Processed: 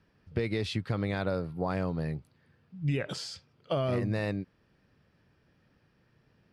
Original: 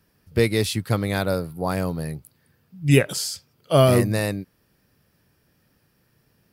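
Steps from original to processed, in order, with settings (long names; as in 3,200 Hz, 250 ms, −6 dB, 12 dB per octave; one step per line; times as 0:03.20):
brickwall limiter −13.5 dBFS, peak gain reduction 10.5 dB
downward compressor 3 to 1, threshold −25 dBFS, peak gain reduction 6 dB
low-pass filter 3,600 Hz 12 dB per octave
level −2 dB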